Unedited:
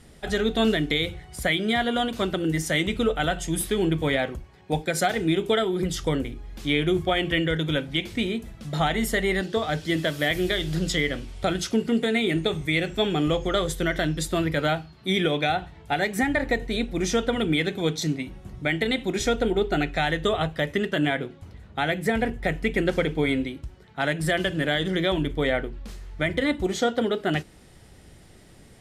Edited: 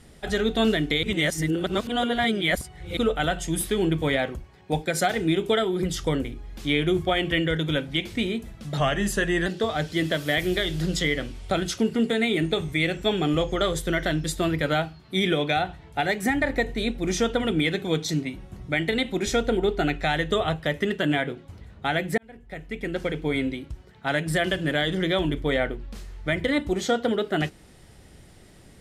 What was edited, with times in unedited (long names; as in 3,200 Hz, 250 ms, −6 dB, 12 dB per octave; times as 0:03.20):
0:01.03–0:02.97: reverse
0:08.77–0:09.39: play speed 90%
0:22.11–0:23.57: fade in